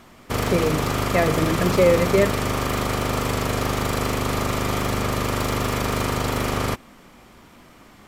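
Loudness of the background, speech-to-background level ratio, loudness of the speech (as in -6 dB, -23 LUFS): -24.0 LUFS, 2.0 dB, -22.0 LUFS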